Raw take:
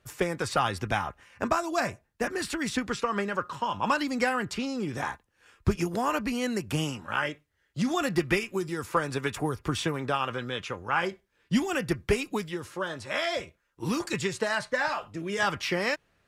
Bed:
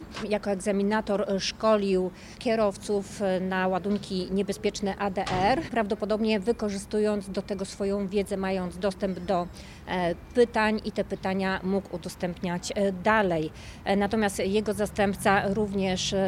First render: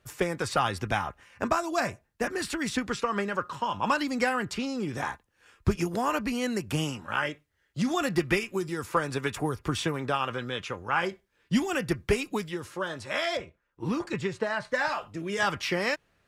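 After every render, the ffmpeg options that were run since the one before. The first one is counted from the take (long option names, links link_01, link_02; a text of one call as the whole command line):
ffmpeg -i in.wav -filter_complex "[0:a]asettb=1/sr,asplit=3[link_01][link_02][link_03];[link_01]atrim=end=13.374[link_04];[link_02]atrim=start=13.37:end=14.65,asetpts=PTS-STARTPTS,afade=type=in:duration=0.004:curve=qsin,afade=type=out:start_time=1.276:duration=0.004:curve=qsin,lowpass=frequency=1800:poles=1[link_05];[link_03]atrim=start=14.646[link_06];[link_04][link_05]acrossfade=duration=0.004:curve1=hsin:curve2=qsin[link_07];[link_07][link_06]acrossfade=duration=0.004:curve1=qsin:curve2=hsin" out.wav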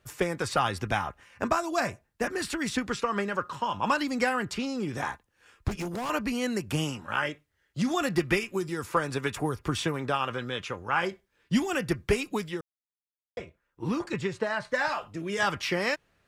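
ffmpeg -i in.wav -filter_complex "[0:a]asettb=1/sr,asplit=3[link_01][link_02][link_03];[link_01]atrim=end=5.684[link_04];[link_02]atrim=start=5.68:end=6.1,asetpts=PTS-STARTPTS,afade=type=in:duration=0.004:curve=qsin,afade=type=out:start_time=0.416:duration=0.004:curve=qsin,asoftclip=type=hard:threshold=-30dB[link_05];[link_03]atrim=start=6.096[link_06];[link_04][link_05]acrossfade=duration=0.004:curve1=hsin:curve2=qsin[link_07];[link_07][link_06]acrossfade=duration=0.004:curve1=qsin:curve2=hsin,asplit=3[link_08][link_09][link_10];[link_08]atrim=end=12.61,asetpts=PTS-STARTPTS,afade=type=out:start_time=12.606:duration=0.004:curve=hsin[link_11];[link_09]atrim=start=12.61:end=13.37,asetpts=PTS-STARTPTS,volume=0[link_12];[link_10]atrim=start=13.37,asetpts=PTS-STARTPTS,afade=type=in:duration=0.004:curve=hsin[link_13];[link_11][link_12][link_13]concat=n=3:v=0:a=1" out.wav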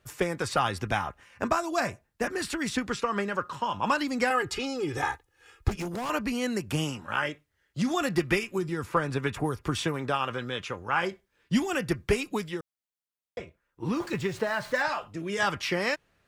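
ffmpeg -i in.wav -filter_complex "[0:a]asettb=1/sr,asplit=3[link_01][link_02][link_03];[link_01]atrim=end=4.304[link_04];[link_02]atrim=start=4.3:end=5.7,asetpts=PTS-STARTPTS,afade=type=in:duration=0.004:curve=qsin,afade=type=out:start_time=1.396:duration=0.004:curve=qsin,aecho=1:1:2.4:0.94,atrim=end_sample=61740[link_05];[link_03]atrim=start=5.696[link_06];[link_04][link_05]acrossfade=duration=0.004:curve1=hsin:curve2=qsin[link_07];[link_07][link_06]acrossfade=duration=0.004:curve1=qsin:curve2=hsin,asettb=1/sr,asplit=3[link_08][link_09][link_10];[link_08]atrim=end=8.584[link_11];[link_09]atrim=start=8.58:end=9.44,asetpts=PTS-STARTPTS,afade=type=in:duration=0.004:curve=qsin,afade=type=out:start_time=0.856:duration=0.004:curve=qsin,bass=frequency=250:gain=4,treble=frequency=4000:gain=-6[link_12];[link_10]atrim=start=9.436[link_13];[link_11][link_12]acrossfade=duration=0.004:curve1=hsin:curve2=qsin[link_14];[link_14][link_13]acrossfade=duration=0.004:curve1=qsin:curve2=hsin,asettb=1/sr,asplit=3[link_15][link_16][link_17];[link_15]atrim=end=13.964[link_18];[link_16]atrim=start=13.96:end=14.82,asetpts=PTS-STARTPTS,afade=type=in:duration=0.004:curve=qsin,afade=type=out:start_time=0.856:duration=0.004:curve=qsin,aeval=exprs='val(0)+0.5*0.00794*sgn(val(0))':channel_layout=same[link_19];[link_17]atrim=start=14.816[link_20];[link_18][link_19]acrossfade=duration=0.004:curve1=hsin:curve2=qsin[link_21];[link_21][link_20]acrossfade=duration=0.004:curve1=qsin:curve2=hsin" out.wav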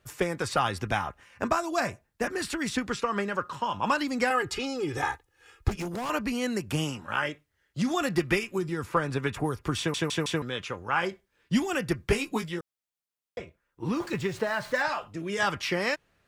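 ffmpeg -i in.wav -filter_complex "[0:a]asettb=1/sr,asplit=3[link_01][link_02][link_03];[link_01]atrim=end=12.064[link_04];[link_02]atrim=start=12.06:end=12.59,asetpts=PTS-STARTPTS,afade=type=in:duration=0.004:curve=qsin,afade=type=out:start_time=0.526:duration=0.004:curve=qsin,asplit=2[link_05][link_06];[link_06]adelay=18,volume=-5dB[link_07];[link_05][link_07]amix=inputs=2:normalize=0,atrim=end_sample=23373[link_08];[link_03]atrim=start=12.586[link_09];[link_04][link_08]acrossfade=duration=0.004:curve1=hsin:curve2=qsin[link_10];[link_10][link_09]acrossfade=duration=0.004:curve1=qsin:curve2=hsin,asplit=5[link_11][link_12][link_13][link_14][link_15];[link_11]atrim=end=9.942[link_16];[link_12]atrim=start=9.778:end=9.942[link_17];[link_13]atrim=start=9.778:end=9.942[link_18];[link_14]atrim=start=9.778:end=9.942[link_19];[link_15]atrim=start=10.418[link_20];[link_16][link_17]acrossfade=duration=0.004:curve1=hsin:curve2=hsin[link_21];[link_21][link_18]acrossfade=duration=0.004:curve1=hsin:curve2=hsin[link_22];[link_22][link_19]acrossfade=duration=0.004:curve1=hsin:curve2=hsin[link_23];[link_23][link_20]acrossfade=duration=0.004:curve1=hsin:curve2=hsin" out.wav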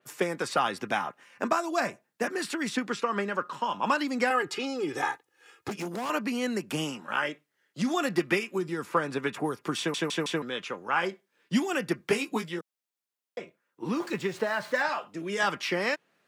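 ffmpeg -i in.wav -af "highpass=frequency=180:width=0.5412,highpass=frequency=180:width=1.3066,adynamicequalizer=threshold=0.00708:dfrequency=4300:dqfactor=0.7:tfrequency=4300:tqfactor=0.7:attack=5:release=100:ratio=0.375:range=2:mode=cutabove:tftype=highshelf" out.wav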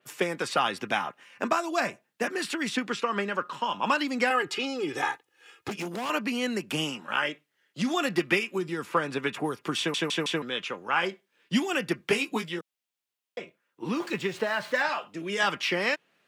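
ffmpeg -i in.wav -af "equalizer=frequency=2900:width_type=o:width=0.91:gain=5.5" out.wav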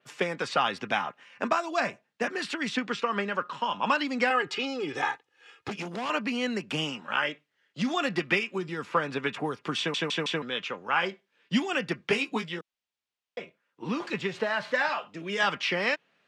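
ffmpeg -i in.wav -af "lowpass=5700,equalizer=frequency=340:width=4.9:gain=-5" out.wav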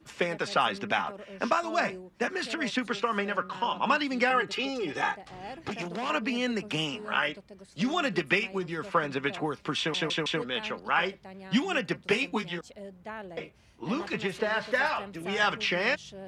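ffmpeg -i in.wav -i bed.wav -filter_complex "[1:a]volume=-18dB[link_01];[0:a][link_01]amix=inputs=2:normalize=0" out.wav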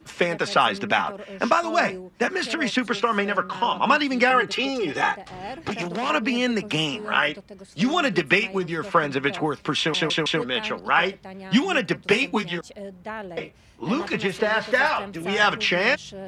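ffmpeg -i in.wav -af "volume=6.5dB" out.wav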